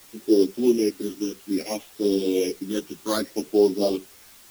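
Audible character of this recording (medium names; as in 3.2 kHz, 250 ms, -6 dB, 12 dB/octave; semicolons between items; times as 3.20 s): a buzz of ramps at a fixed pitch in blocks of 8 samples; phasing stages 8, 0.6 Hz, lowest notch 620–2100 Hz; a quantiser's noise floor 8-bit, dither triangular; a shimmering, thickened sound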